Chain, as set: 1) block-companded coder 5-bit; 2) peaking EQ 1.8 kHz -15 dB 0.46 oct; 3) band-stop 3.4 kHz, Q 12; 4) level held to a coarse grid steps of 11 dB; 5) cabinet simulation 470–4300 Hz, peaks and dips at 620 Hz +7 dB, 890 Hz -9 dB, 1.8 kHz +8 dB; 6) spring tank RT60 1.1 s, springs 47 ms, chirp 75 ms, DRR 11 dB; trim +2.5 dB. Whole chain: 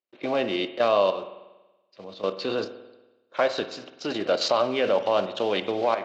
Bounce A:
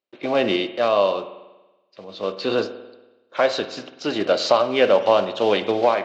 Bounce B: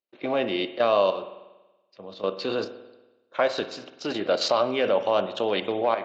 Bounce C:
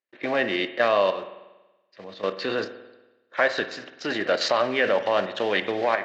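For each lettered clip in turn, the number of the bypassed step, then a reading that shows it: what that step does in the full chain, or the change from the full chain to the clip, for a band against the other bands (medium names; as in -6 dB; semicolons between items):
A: 4, loudness change +5.0 LU; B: 1, distortion -21 dB; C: 2, 2 kHz band +8.5 dB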